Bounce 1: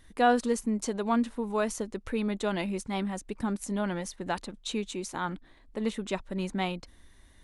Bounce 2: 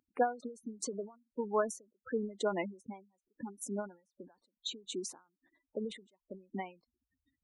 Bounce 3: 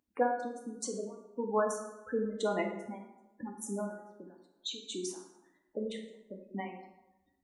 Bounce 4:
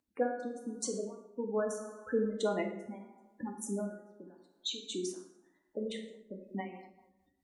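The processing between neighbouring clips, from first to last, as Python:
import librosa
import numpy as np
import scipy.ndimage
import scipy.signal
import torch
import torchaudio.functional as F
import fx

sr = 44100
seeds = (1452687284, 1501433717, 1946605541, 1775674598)

y1 = fx.spec_gate(x, sr, threshold_db=-15, keep='strong')
y1 = scipy.signal.sosfilt(scipy.signal.butter(2, 300.0, 'highpass', fs=sr, output='sos'), y1)
y1 = fx.end_taper(y1, sr, db_per_s=170.0)
y2 = fx.rev_plate(y1, sr, seeds[0], rt60_s=1.0, hf_ratio=0.6, predelay_ms=0, drr_db=2.0)
y3 = fx.rotary_switch(y2, sr, hz=0.8, then_hz=5.0, switch_at_s=6.03)
y3 = y3 * 10.0 ** (2.0 / 20.0)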